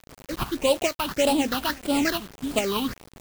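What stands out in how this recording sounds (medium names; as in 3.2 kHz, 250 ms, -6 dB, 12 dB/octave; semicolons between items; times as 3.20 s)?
aliases and images of a low sample rate 3.5 kHz, jitter 20%; phasing stages 6, 1.7 Hz, lowest notch 510–1800 Hz; a quantiser's noise floor 8-bit, dither none; tremolo saw up 2.3 Hz, depth 35%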